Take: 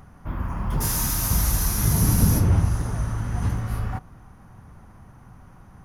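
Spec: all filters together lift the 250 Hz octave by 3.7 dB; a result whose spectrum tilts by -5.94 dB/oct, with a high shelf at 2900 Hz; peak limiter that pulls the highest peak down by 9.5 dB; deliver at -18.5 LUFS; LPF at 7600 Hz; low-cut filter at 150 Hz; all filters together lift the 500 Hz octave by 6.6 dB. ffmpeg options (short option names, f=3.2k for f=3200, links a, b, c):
-af "highpass=150,lowpass=7.6k,equalizer=f=250:t=o:g=5.5,equalizer=f=500:t=o:g=7,highshelf=f=2.9k:g=-5.5,volume=10dB,alimiter=limit=-7.5dB:level=0:latency=1"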